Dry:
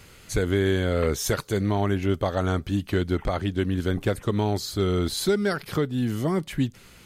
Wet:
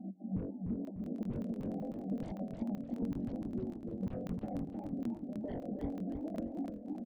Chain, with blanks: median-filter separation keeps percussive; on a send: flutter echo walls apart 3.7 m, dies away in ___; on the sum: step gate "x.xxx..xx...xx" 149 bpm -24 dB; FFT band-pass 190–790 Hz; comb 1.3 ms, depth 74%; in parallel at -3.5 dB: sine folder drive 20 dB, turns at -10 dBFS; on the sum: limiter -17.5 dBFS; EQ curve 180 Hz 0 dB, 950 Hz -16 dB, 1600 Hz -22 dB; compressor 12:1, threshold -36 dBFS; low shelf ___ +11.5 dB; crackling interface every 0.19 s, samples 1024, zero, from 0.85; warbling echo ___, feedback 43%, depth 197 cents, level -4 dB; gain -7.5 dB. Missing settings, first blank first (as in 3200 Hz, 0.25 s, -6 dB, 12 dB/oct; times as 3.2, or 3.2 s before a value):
0.36 s, 420 Hz, 0.304 s